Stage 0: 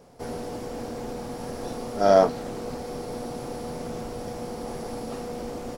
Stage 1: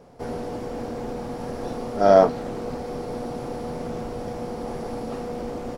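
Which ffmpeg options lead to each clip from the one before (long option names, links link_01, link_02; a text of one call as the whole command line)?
ffmpeg -i in.wav -af "highshelf=frequency=4100:gain=-9.5,volume=3dB" out.wav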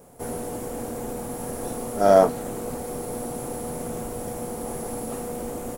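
ffmpeg -i in.wav -af "aexciter=amount=9:drive=5.1:freq=7200,volume=-1dB" out.wav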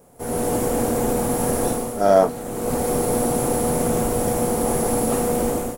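ffmpeg -i in.wav -af "dynaudnorm=framelen=130:gausssize=5:maxgain=13dB,volume=-2dB" out.wav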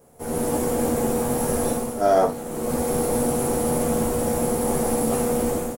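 ffmpeg -i in.wav -af "aecho=1:1:13|58:0.668|0.398,volume=-4dB" out.wav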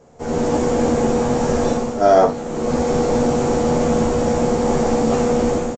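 ffmpeg -i in.wav -af "aresample=16000,aresample=44100,volume=5.5dB" out.wav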